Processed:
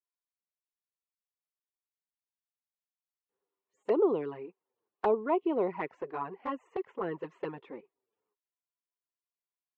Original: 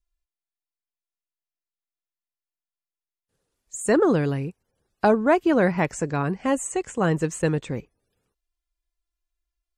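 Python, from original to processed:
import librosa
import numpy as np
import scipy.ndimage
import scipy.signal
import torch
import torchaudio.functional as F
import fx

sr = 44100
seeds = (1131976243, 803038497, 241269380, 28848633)

y = fx.cabinet(x, sr, low_hz=390.0, low_slope=12, high_hz=2700.0, hz=(400.0, 590.0, 1000.0, 1600.0, 2400.0), db=(8, -4, 7, -7, -4))
y = fx.env_flanger(y, sr, rest_ms=10.0, full_db=-17.0)
y = y * librosa.db_to_amplitude(-7.0)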